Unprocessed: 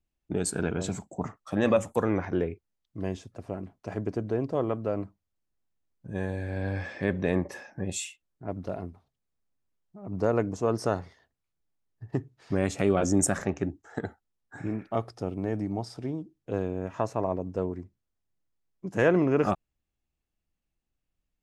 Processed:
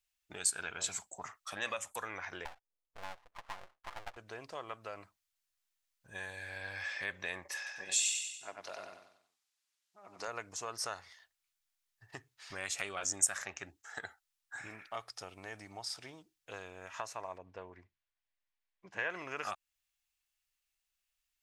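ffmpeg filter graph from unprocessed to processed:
-filter_complex "[0:a]asettb=1/sr,asplit=3[a][b][c];[a]atrim=end=2.454[d];[b]atrim=start=2.45:end=4.17,asetpts=PTS-STARTPTS,afade=t=in:d=0.004:c=qsin,afade=t=out:st=1.716:d=0.004:c=qsin,lowpass=f=490:t=q:w=2.8,aecho=1:1:5.8:0.6,atrim=end_sample=75852,aeval=exprs='abs(val(0))':c=same[e];[c]atrim=start=4.166[f];[d][e]acrossfade=d=0.004:c1=hsin:c2=qsin[g];[g][f]acrossfade=d=0.004:c1=qsin:c2=hsin,asettb=1/sr,asplit=3[h][i][j];[h]atrim=end=7.574[k];[i]atrim=start=7.57:end=10.28,asetpts=PTS-STARTPTS,afade=t=in:d=0.004:c=qsin,afade=t=out:st=2.706:d=0.004:c=qsin,highpass=230,lowpass=5.7k,aemphasis=mode=production:type=50fm,aecho=1:1:94|188|282|376|470:0.631|0.265|0.111|0.0467|0.0196,atrim=end_sample=119511[l];[j]atrim=start=10.276[m];[k][l]acrossfade=d=0.004:c1=hsin:c2=qsin[n];[n][m]acrossfade=d=0.004:c1=qsin:c2=hsin,asettb=1/sr,asplit=3[o][p][q];[o]atrim=end=17.384[r];[p]atrim=start=17.38:end=19.1,asetpts=PTS-STARTPTS,afade=t=in:d=0.004:c=qsin,afade=t=out:st=1.716:d=0.004:c=qsin,lowpass=2.6k,bandreject=f=1.3k:w=8.3[s];[q]atrim=start=19.096[t];[r][s]acrossfade=d=0.004:c1=hsin:c2=qsin[u];[u][t]acrossfade=d=0.004:c1=qsin:c2=hsin,equalizer=f=230:w=0.43:g=-14,acompressor=threshold=-40dB:ratio=2,tiltshelf=f=710:g=-10,volume=-2dB"

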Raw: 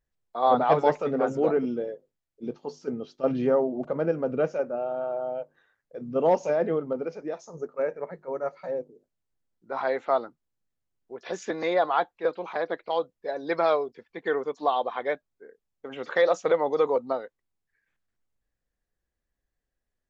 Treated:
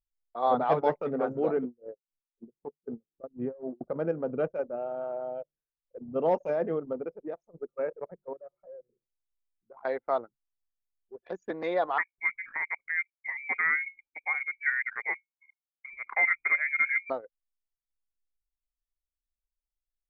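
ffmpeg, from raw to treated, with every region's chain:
-filter_complex "[0:a]asettb=1/sr,asplit=3[a][b][c];[a]atrim=end=1.644[d];[b]atrim=start=1.64:end=3.81,asetpts=PTS-STARTPTS,afade=t=in:d=0.004:c=qsin,afade=t=out:st=2.166:d=0.004:c=qsin,lowpass=1.7k,aeval=exprs='val(0)*pow(10,-21*(0.5-0.5*cos(2*PI*3.9*n/s))/20)':c=same[e];[c]atrim=start=3.806[f];[d][e]acrossfade=d=0.004:c1=hsin:c2=qsin[g];[g][f]acrossfade=d=0.004:c1=qsin:c2=hsin,asettb=1/sr,asplit=3[h][i][j];[h]atrim=end=8.334[k];[i]atrim=start=8.33:end=9.85,asetpts=PTS-STARTPTS,afade=t=in:d=0.004:c=qsin,afade=t=out:st=1.516:d=0.004:c=qsin,bandreject=f=122.8:t=h:w=4,bandreject=f=245.6:t=h:w=4,bandreject=f=368.4:t=h:w=4,bandreject=f=491.2:t=h:w=4,bandreject=f=614:t=h:w=4,bandreject=f=736.8:t=h:w=4,bandreject=f=859.6:t=h:w=4,bandreject=f=982.4:t=h:w=4,bandreject=f=1.1052k:t=h:w=4,bandreject=f=1.228k:t=h:w=4,bandreject=f=1.3508k:t=h:w=4,bandreject=f=1.4736k:t=h:w=4,bandreject=f=1.5964k:t=h:w=4,bandreject=f=1.7192k:t=h:w=4,bandreject=f=1.842k:t=h:w=4,bandreject=f=1.9648k:t=h:w=4,bandreject=f=2.0876k:t=h:w=4,bandreject=f=2.2104k:t=h:w=4,bandreject=f=2.3332k:t=h:w=4,bandreject=f=2.456k:t=h:w=4,bandreject=f=2.5788k:t=h:w=4,bandreject=f=2.7016k:t=h:w=4,bandreject=f=2.8244k:t=h:w=4,bandreject=f=2.9472k:t=h:w=4,bandreject=f=3.07k:t=h:w=4,bandreject=f=3.1928k:t=h:w=4,bandreject=f=3.3156k:t=h:w=4,bandreject=f=3.4384k:t=h:w=4,bandreject=f=3.5612k:t=h:w=4,bandreject=f=3.684k:t=h:w=4,bandreject=f=3.8068k:t=h:w=4,bandreject=f=3.9296k:t=h:w=4,bandreject=f=4.0524k:t=h:w=4,bandreject=f=4.1752k:t=h:w=4,bandreject=f=4.298k:t=h:w=4,bandreject=f=4.4208k:t=h:w=4,bandreject=f=4.5436k:t=h:w=4,bandreject=f=4.6664k:t=h:w=4,bandreject=f=4.7892k:t=h:w=4,acompressor=threshold=-44dB:ratio=2:attack=3.2:release=140:knee=1:detection=peak[l];[j]atrim=start=9.846[m];[k][l]acrossfade=d=0.004:c1=hsin:c2=qsin[n];[n][m]acrossfade=d=0.004:c1=qsin:c2=hsin,asettb=1/sr,asplit=3[o][p][q];[o]atrim=end=11.984[r];[p]atrim=start=11.98:end=17.1,asetpts=PTS-STARTPTS,afade=t=in:d=0.004:c=qsin,afade=t=out:st=5.116:d=0.004:c=qsin,lowshelf=f=320:g=5,bandreject=f=60:t=h:w=6,bandreject=f=120:t=h:w=6,bandreject=f=180:t=h:w=6,bandreject=f=240:t=h:w=6,bandreject=f=300:t=h:w=6,bandreject=f=360:t=h:w=6,bandreject=f=420:t=h:w=6,lowpass=f=2.2k:t=q:w=0.5098,lowpass=f=2.2k:t=q:w=0.6013,lowpass=f=2.2k:t=q:w=0.9,lowpass=f=2.2k:t=q:w=2.563,afreqshift=-2600[s];[q]atrim=start=17.096[t];[r][s]acrossfade=d=0.004:c1=hsin:c2=qsin[u];[u][t]acrossfade=d=0.004:c1=qsin:c2=hsin,anlmdn=6.31,highshelf=f=4k:g=-6,volume=-4dB"

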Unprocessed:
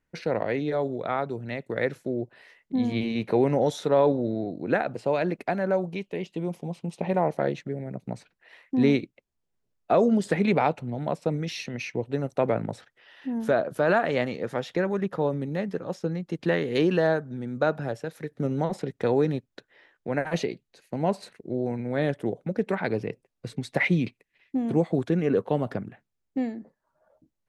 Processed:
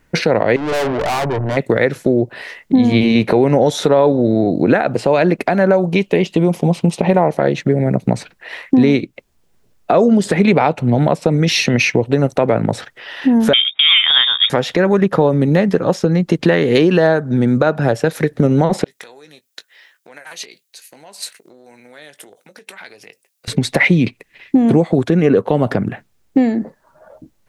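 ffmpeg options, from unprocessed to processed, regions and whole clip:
-filter_complex "[0:a]asettb=1/sr,asplit=3[a][b][c];[a]atrim=end=0.564[d];[b]atrim=start=0.56:end=1.57,asetpts=PTS-STARTPTS,afade=t=in:d=0.004:c=qsin,afade=t=out:st=1.006:d=0.004:c=qsin,lowpass=f=960:t=q:w=2.7,aecho=1:1:6.8:0.31,atrim=end_sample=44541,aeval=exprs='(tanh(79.4*val(0)+0.3)-tanh(0.3))/79.4':c=same[e];[c]atrim=start=1.566[f];[d][e]acrossfade=d=0.004:c1=hsin:c2=qsin[g];[g][f]acrossfade=d=0.004:c1=qsin:c2=hsin,asettb=1/sr,asplit=3[h][i][j];[h]atrim=end=13.534[k];[i]atrim=start=13.53:end=14.5,asetpts=PTS-STARTPTS,afade=t=in:d=0.004:c=qsin,afade=t=out:st=0.966:d=0.004:c=qsin,agate=range=-19dB:threshold=-36dB:ratio=16:release=100:detection=peak,lowpass=f=3.2k:t=q:w=0.5098,lowpass=f=3.2k:t=q:w=0.6013,lowpass=f=3.2k:t=q:w=0.9,lowpass=f=3.2k:t=q:w=2.563,afreqshift=-3800[l];[j]atrim=start=14.496[m];[k][l]acrossfade=d=0.004:c1=hsin:c2=qsin[n];[n][m]acrossfade=d=0.004:c1=qsin:c2=hsin,asettb=1/sr,asplit=3[o][p][q];[o]atrim=end=18.844[r];[p]atrim=start=18.84:end=23.48,asetpts=PTS-STARTPTS,afade=t=in:d=0.004:c=qsin,afade=t=out:st=4.636:d=0.004:c=qsin,acompressor=threshold=-35dB:ratio=16:attack=3.2:release=140:knee=1:detection=peak,aderivative,asplit=2[s][t];[t]adelay=20,volume=-12.5dB[u];[s][u]amix=inputs=2:normalize=0,atrim=end_sample=204624[v];[q]atrim=start=23.476[w];[r][v]acrossfade=d=0.004:c1=hsin:c2=qsin[x];[x][w]acrossfade=d=0.004:c1=qsin:c2=hsin,acompressor=threshold=-31dB:ratio=5,alimiter=level_in=22.5dB:limit=-1dB:release=50:level=0:latency=1,volume=-1dB"

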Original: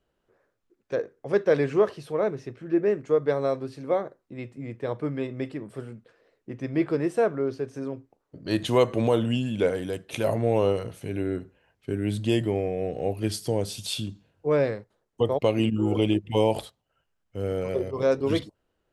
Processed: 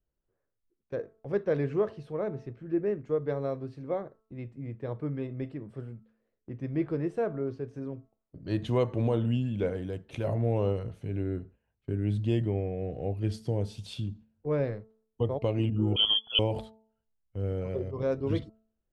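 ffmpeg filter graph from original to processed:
-filter_complex "[0:a]asettb=1/sr,asplit=3[a][b][c];[a]atrim=end=15.964[d];[b]atrim=start=15.96:end=16.39,asetpts=PTS-STARTPTS,afade=t=in:d=0.004:c=qsin,afade=t=out:st=0.426:d=0.004:c=qsin,equalizer=f=480:t=o:w=2.6:g=11,lowpass=f=3k:t=q:w=0.5098,lowpass=f=3k:t=q:w=0.6013,lowpass=f=3k:t=q:w=0.9,lowpass=f=3k:t=q:w=2.563,afreqshift=-3500[e];[c]atrim=start=16.386[f];[d][e]acrossfade=d=0.004:c1=hsin:c2=qsin[g];[g][f]acrossfade=d=0.004:c1=qsin:c2=hsin,agate=range=-9dB:threshold=-48dB:ratio=16:detection=peak,aemphasis=mode=reproduction:type=bsi,bandreject=f=220.2:t=h:w=4,bandreject=f=440.4:t=h:w=4,bandreject=f=660.6:t=h:w=4,bandreject=f=880.8:t=h:w=4,bandreject=f=1.101k:t=h:w=4,bandreject=f=1.3212k:t=h:w=4,volume=-8.5dB"

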